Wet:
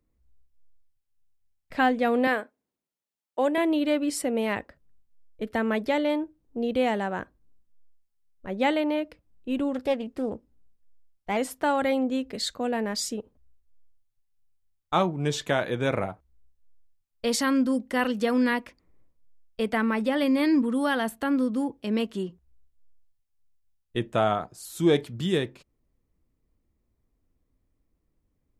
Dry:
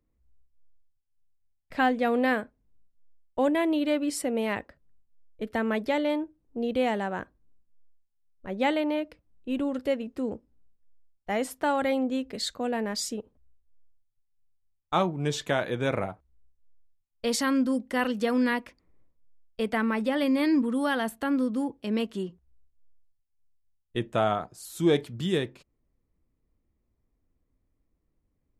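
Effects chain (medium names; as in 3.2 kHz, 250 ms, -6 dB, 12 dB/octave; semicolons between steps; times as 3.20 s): 2.27–3.58 s: high-pass 330 Hz 12 dB/octave; 9.74–11.37 s: loudspeaker Doppler distortion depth 0.2 ms; trim +1.5 dB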